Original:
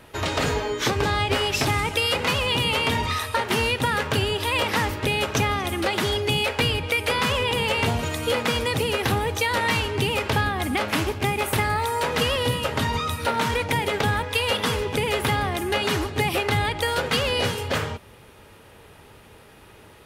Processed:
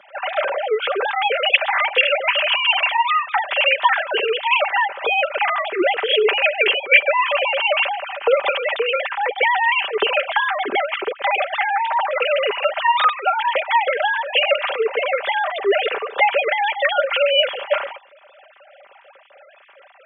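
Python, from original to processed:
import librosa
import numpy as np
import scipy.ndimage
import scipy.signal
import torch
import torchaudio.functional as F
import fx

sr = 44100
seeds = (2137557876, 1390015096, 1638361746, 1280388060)

y = fx.sine_speech(x, sr)
y = scipy.signal.sosfilt(scipy.signal.butter(4, 190.0, 'highpass', fs=sr, output='sos'), y)
y = y + 0.42 * np.pad(y, (int(5.1 * sr / 1000.0), 0))[:len(y)]
y = F.gain(torch.from_numpy(y), 4.0).numpy()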